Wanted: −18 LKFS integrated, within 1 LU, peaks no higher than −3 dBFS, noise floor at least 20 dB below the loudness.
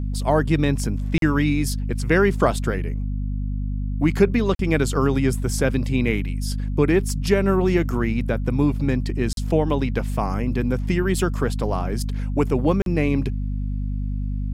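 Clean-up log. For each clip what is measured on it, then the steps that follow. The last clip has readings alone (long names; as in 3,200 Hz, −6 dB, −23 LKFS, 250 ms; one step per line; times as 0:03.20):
number of dropouts 4; longest dropout 42 ms; mains hum 50 Hz; hum harmonics up to 250 Hz; level of the hum −22 dBFS; integrated loudness −22.5 LKFS; sample peak −3.5 dBFS; target loudness −18.0 LKFS
→ repair the gap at 0:01.18/0:04.55/0:09.33/0:12.82, 42 ms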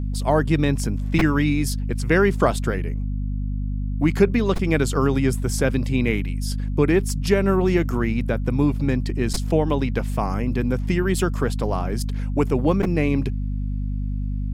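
number of dropouts 0; mains hum 50 Hz; hum harmonics up to 250 Hz; level of the hum −22 dBFS
→ mains-hum notches 50/100/150/200/250 Hz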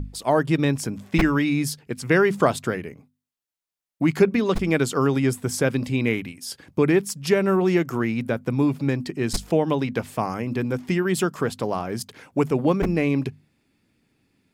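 mains hum none found; integrated loudness −23.0 LKFS; sample peak −4.0 dBFS; target loudness −18.0 LKFS
→ level +5 dB
brickwall limiter −3 dBFS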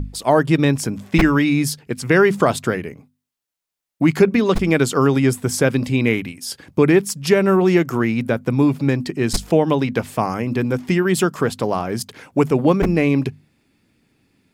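integrated loudness −18.5 LKFS; sample peak −3.0 dBFS; background noise floor −84 dBFS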